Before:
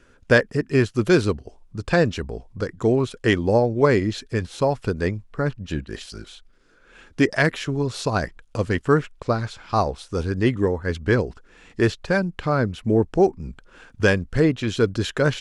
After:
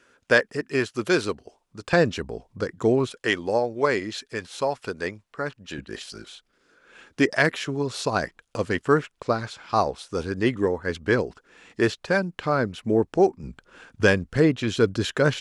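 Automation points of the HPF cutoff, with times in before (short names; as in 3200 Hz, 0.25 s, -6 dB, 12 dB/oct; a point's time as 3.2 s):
HPF 6 dB/oct
530 Hz
from 1.93 s 170 Hz
from 3.13 s 700 Hz
from 5.78 s 250 Hz
from 13.43 s 110 Hz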